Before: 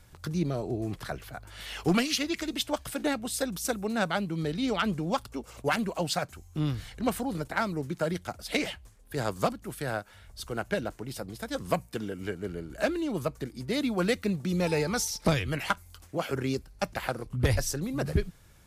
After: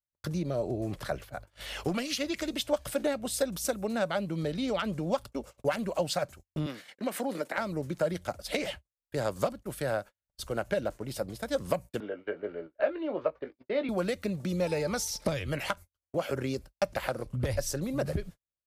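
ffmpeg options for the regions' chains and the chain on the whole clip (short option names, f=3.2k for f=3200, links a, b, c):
-filter_complex "[0:a]asettb=1/sr,asplit=3[a][b][c];[a]atrim=end=6.664[d];[b]atrim=start=6.66:end=7.58,asetpts=PTS-STARTPTS,afade=t=in:d=0.004:c=qsin,afade=t=out:st=0.916:d=0.004:c=qsin,highpass=f=220:w=0.5412,highpass=f=220:w=1.3066,equalizer=f=2k:w=1.7:g=6,acompressor=threshold=-29dB:ratio=4:attack=3.2:release=140:knee=1:detection=peak[e];[c]atrim=start=7.576[f];[d][e]acrossfade=d=0.004:c1=hsin:c2=qsin[g];[g][f]acrossfade=d=0.004:c1=qsin:c2=hsin,asettb=1/sr,asplit=3[h][i][j];[h]atrim=end=12.004[k];[i]atrim=start=12:end=13.89,asetpts=PTS-STARTPTS,afade=t=in:d=0.004:c=qsin,afade=t=out:st=1.886:d=0.004:c=qsin,lowpass=f=4.8k:w=0.5412,lowpass=f=4.8k:w=1.3066,acrossover=split=300 2900:gain=0.1 1 0.0708[l][m][n];[l][m][n]amix=inputs=3:normalize=0,asplit=2[o][p];[p]adelay=19,volume=-9dB[q];[o][q]amix=inputs=2:normalize=0,atrim=end_sample=83349[r];[j]atrim=start=13.886[s];[k][r]acrossfade=d=0.004:c1=hsin:c2=qsin[t];[t][s]acrossfade=d=0.004:c1=qsin:c2=hsin,acompressor=threshold=-28dB:ratio=8,agate=range=-48dB:threshold=-43dB:ratio=16:detection=peak,equalizer=f=570:t=o:w=0.29:g=10.5"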